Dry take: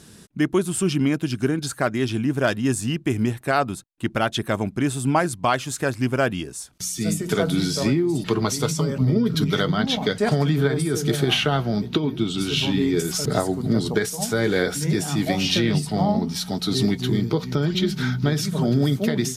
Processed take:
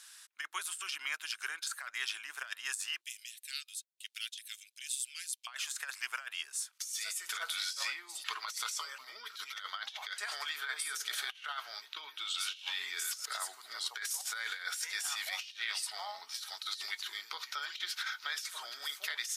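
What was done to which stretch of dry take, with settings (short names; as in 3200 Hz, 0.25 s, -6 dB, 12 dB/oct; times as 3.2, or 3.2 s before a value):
3.01–5.47 inverse Chebyshev high-pass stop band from 880 Hz, stop band 60 dB
whole clip: HPF 1200 Hz 24 dB/oct; negative-ratio compressor -32 dBFS, ratio -0.5; gain -5.5 dB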